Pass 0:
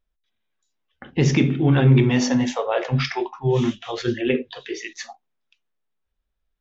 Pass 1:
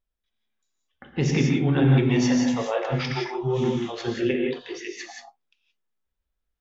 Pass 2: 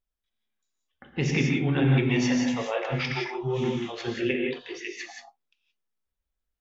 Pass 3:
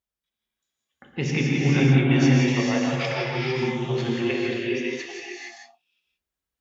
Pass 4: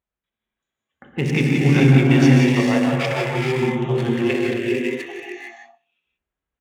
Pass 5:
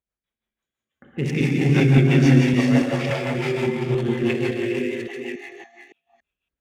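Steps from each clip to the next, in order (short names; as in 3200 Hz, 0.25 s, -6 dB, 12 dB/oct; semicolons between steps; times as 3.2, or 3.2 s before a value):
non-linear reverb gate 0.2 s rising, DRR 1 dB; gain -5.5 dB
dynamic EQ 2400 Hz, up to +7 dB, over -47 dBFS, Q 1.7; gain -3.5 dB
HPF 70 Hz; non-linear reverb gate 0.48 s rising, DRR -0.5 dB
Wiener smoothing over 9 samples; feedback echo 64 ms, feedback 47%, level -23 dB; gain +5 dB
reverse delay 0.282 s, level -6 dB; rotary speaker horn 6 Hz; gain -1.5 dB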